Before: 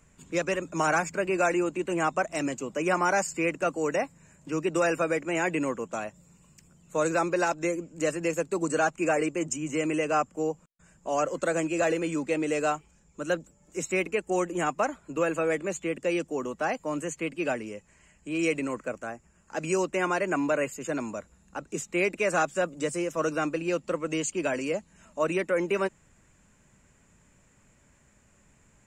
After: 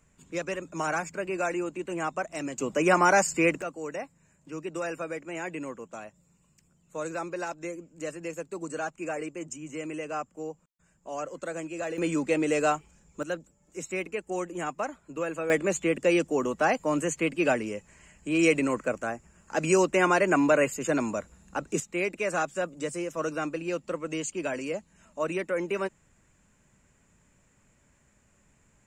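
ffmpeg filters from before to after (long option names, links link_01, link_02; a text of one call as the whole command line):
ffmpeg -i in.wav -af "asetnsamples=nb_out_samples=441:pad=0,asendcmd='2.58 volume volume 4dB;3.62 volume volume -8dB;11.98 volume volume 2dB;13.23 volume volume -5dB;15.5 volume volume 4.5dB;21.8 volume volume -3dB',volume=-4.5dB" out.wav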